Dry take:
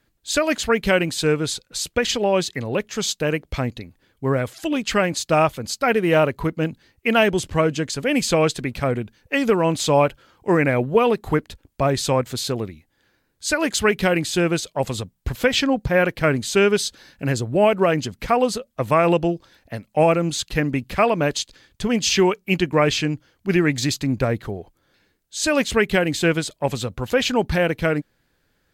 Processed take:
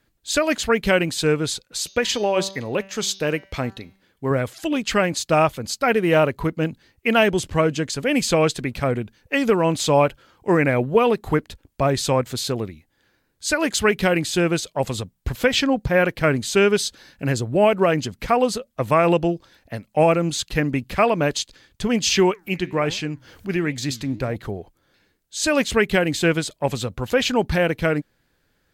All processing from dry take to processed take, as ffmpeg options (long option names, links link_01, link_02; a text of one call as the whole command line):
ffmpeg -i in.wav -filter_complex "[0:a]asettb=1/sr,asplit=3[link_01][link_02][link_03];[link_01]atrim=end=1.644[link_04];[link_02]atrim=start=1.64:end=4.31,asetpts=PTS-STARTPTS,afade=type=in:duration=0.004:curve=qsin,afade=type=out:start_time=2.666:duration=0.004:curve=qsin,lowshelf=frequency=120:gain=-7.5,bandreject=frequency=193.6:width_type=h:width=4,bandreject=frequency=387.2:width_type=h:width=4,bandreject=frequency=580.8:width_type=h:width=4,bandreject=frequency=774.4:width_type=h:width=4,bandreject=frequency=968:width_type=h:width=4,bandreject=frequency=1161.6:width_type=h:width=4,bandreject=frequency=1355.2:width_type=h:width=4,bandreject=frequency=1548.8:width_type=h:width=4,bandreject=frequency=1742.4:width_type=h:width=4,bandreject=frequency=1936:width_type=h:width=4,bandreject=frequency=2129.6:width_type=h:width=4,bandreject=frequency=2323.2:width_type=h:width=4,bandreject=frequency=2516.8:width_type=h:width=4,bandreject=frequency=2710.4:width_type=h:width=4,bandreject=frequency=2904:width_type=h:width=4,bandreject=frequency=3097.6:width_type=h:width=4,bandreject=frequency=3291.2:width_type=h:width=4,bandreject=frequency=3484.8:width_type=h:width=4,bandreject=frequency=3678.4:width_type=h:width=4,bandreject=frequency=3872:width_type=h:width=4,bandreject=frequency=4065.6:width_type=h:width=4,bandreject=frequency=4259.2:width_type=h:width=4,bandreject=frequency=4452.8:width_type=h:width=4,bandreject=frequency=4646.4:width_type=h:width=4,bandreject=frequency=4840:width_type=h:width=4,bandreject=frequency=5033.6:width_type=h:width=4,bandreject=frequency=5227.2:width_type=h:width=4,bandreject=frequency=5420.8:width_type=h:width=4,bandreject=frequency=5614.4:width_type=h:width=4,bandreject=frequency=5808:width_type=h:width=4,bandreject=frequency=6001.6:width_type=h:width=4,bandreject=frequency=6195.2:width_type=h:width=4,bandreject=frequency=6388.8:width_type=h:width=4,bandreject=frequency=6582.4:width_type=h:width=4[link_05];[link_03]atrim=start=4.306[link_06];[link_04][link_05]acrossfade=duration=0.004:curve1=hsin:curve2=qsin[link_07];[link_07][link_06]acrossfade=duration=0.004:curve1=qsin:curve2=hsin,asettb=1/sr,asplit=3[link_08][link_09][link_10];[link_08]atrim=end=22.314[link_11];[link_09]atrim=start=22.31:end=24.36,asetpts=PTS-STARTPTS,afade=type=in:duration=0.004:curve=qsin,afade=type=out:start_time=2.046:duration=0.004:curve=qsin,acompressor=mode=upward:threshold=-23dB:ratio=2.5:attack=3.2:release=140:knee=2.83:detection=peak,flanger=delay=3.6:depth=7.9:regen=89:speed=1.4:shape=triangular[link_12];[link_10]atrim=start=24.356[link_13];[link_11][link_12]acrossfade=duration=0.004:curve1=hsin:curve2=qsin[link_14];[link_14][link_13]acrossfade=duration=0.004:curve1=qsin:curve2=hsin" out.wav